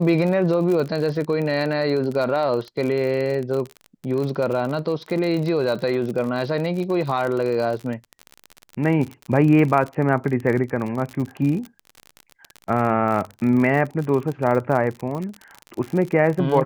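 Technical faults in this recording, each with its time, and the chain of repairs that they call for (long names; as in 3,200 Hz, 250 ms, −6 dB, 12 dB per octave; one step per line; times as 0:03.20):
surface crackle 45 per second −26 dBFS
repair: click removal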